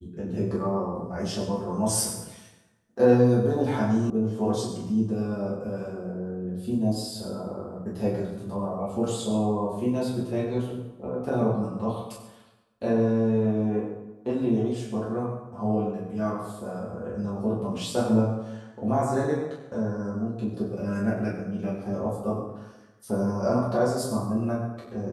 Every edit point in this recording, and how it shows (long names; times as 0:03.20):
0:04.10: cut off before it has died away